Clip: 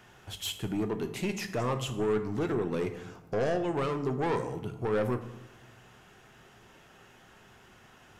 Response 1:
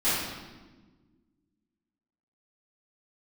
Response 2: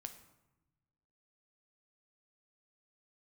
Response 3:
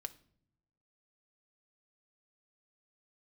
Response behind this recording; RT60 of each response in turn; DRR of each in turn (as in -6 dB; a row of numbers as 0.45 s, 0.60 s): 2; 1.3 s, 1.0 s, no single decay rate; -15.5 dB, 7.0 dB, 5.5 dB